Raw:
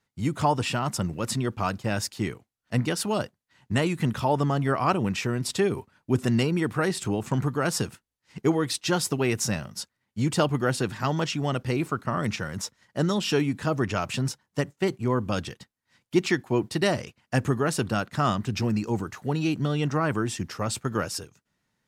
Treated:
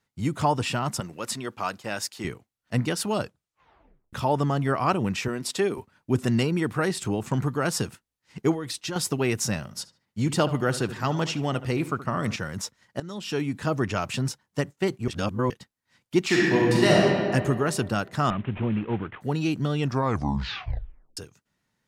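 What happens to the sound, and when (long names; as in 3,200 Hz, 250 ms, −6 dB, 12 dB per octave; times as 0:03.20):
0:01.00–0:02.25: high-pass filter 520 Hz 6 dB per octave
0:03.19: tape stop 0.94 s
0:05.28–0:05.78: high-pass filter 220 Hz
0:08.53–0:08.96: downward compressor, threshold −28 dBFS
0:09.63–0:12.36: feedback echo with a low-pass in the loop 74 ms, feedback 40%, low-pass 2,900 Hz, level −14 dB
0:13.00–0:13.65: fade in, from −19.5 dB
0:15.08–0:15.50: reverse
0:16.25–0:16.97: thrown reverb, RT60 2.1 s, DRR −5.5 dB
0:18.30–0:19.21: variable-slope delta modulation 16 kbit/s
0:19.80: tape stop 1.37 s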